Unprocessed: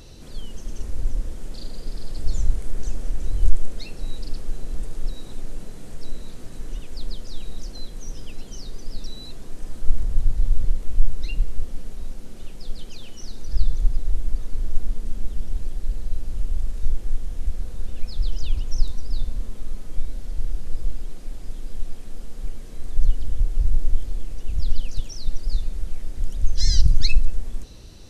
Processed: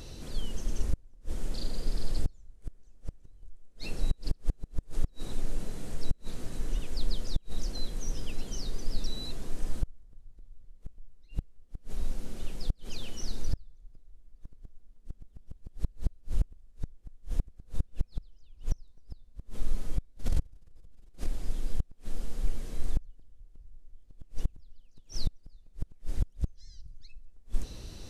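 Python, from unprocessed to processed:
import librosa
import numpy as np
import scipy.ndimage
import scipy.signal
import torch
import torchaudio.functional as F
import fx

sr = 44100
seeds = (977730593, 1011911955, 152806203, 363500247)

y = fx.transient(x, sr, attack_db=-2, sustain_db=11, at=(20.17, 21.25), fade=0.02)
y = fx.gate_flip(y, sr, shuts_db=-14.0, range_db=-32)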